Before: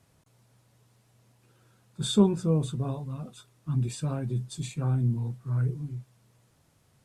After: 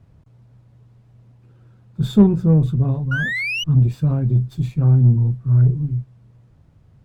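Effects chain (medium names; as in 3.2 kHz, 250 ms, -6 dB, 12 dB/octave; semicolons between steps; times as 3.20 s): RIAA curve playback; in parallel at -7.5 dB: saturation -17.5 dBFS, distortion -9 dB; on the sum: painted sound rise, 3.11–3.64 s, 1.4–3 kHz -23 dBFS; sliding maximum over 3 samples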